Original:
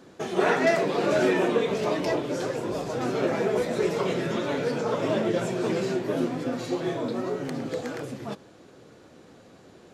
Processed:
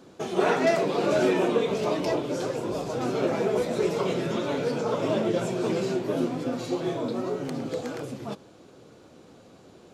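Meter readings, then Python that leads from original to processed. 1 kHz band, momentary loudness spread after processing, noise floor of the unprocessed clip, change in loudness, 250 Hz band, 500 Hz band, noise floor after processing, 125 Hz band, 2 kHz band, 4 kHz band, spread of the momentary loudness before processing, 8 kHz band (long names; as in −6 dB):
−0.5 dB, 9 LU, −52 dBFS, −0.5 dB, 0.0 dB, 0.0 dB, −52 dBFS, 0.0 dB, −3.5 dB, −0.5 dB, 9 LU, 0.0 dB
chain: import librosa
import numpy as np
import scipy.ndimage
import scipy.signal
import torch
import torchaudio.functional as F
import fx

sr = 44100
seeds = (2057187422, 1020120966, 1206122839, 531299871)

y = fx.peak_eq(x, sr, hz=1800.0, db=-6.0, octaves=0.43)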